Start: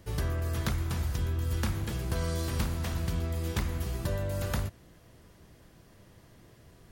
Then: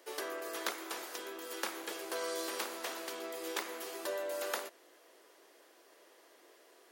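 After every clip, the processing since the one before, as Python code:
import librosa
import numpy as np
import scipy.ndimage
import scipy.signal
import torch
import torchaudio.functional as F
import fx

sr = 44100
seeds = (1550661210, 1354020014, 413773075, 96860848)

y = scipy.signal.sosfilt(scipy.signal.butter(6, 350.0, 'highpass', fs=sr, output='sos'), x)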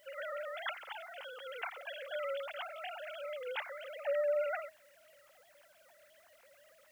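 y = fx.sine_speech(x, sr)
y = fx.tilt_eq(y, sr, slope=2.0)
y = fx.quant_dither(y, sr, seeds[0], bits=12, dither='triangular')
y = y * 10.0 ** (2.0 / 20.0)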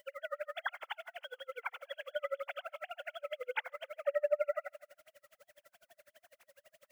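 y = fx.echo_feedback(x, sr, ms=131, feedback_pct=48, wet_db=-15.5)
y = y * 10.0 ** (-37 * (0.5 - 0.5 * np.cos(2.0 * np.pi * 12.0 * np.arange(len(y)) / sr)) / 20.0)
y = y * 10.0 ** (6.0 / 20.0)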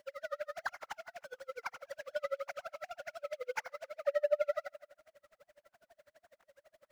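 y = scipy.ndimage.median_filter(x, 15, mode='constant')
y = y * 10.0 ** (1.0 / 20.0)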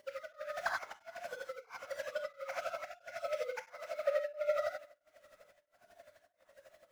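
y = fx.rev_gated(x, sr, seeds[1], gate_ms=110, shape='rising', drr_db=-1.5)
y = y * np.abs(np.cos(np.pi * 1.5 * np.arange(len(y)) / sr))
y = y * 10.0 ** (1.5 / 20.0)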